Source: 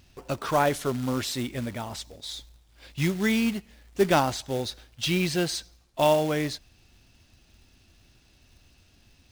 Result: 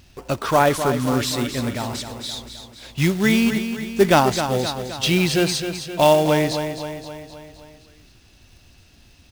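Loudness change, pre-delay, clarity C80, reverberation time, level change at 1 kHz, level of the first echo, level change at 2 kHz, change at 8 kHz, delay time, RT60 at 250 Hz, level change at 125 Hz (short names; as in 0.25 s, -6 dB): +7.0 dB, none, none, none, +7.0 dB, -9.0 dB, +7.0 dB, +7.0 dB, 0.261 s, none, +7.0 dB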